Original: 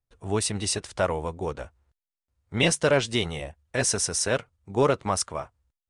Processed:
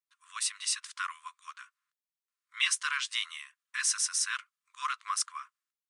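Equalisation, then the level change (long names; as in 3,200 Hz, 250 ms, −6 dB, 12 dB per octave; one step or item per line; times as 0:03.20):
linear-phase brick-wall high-pass 1,000 Hz
−3.0 dB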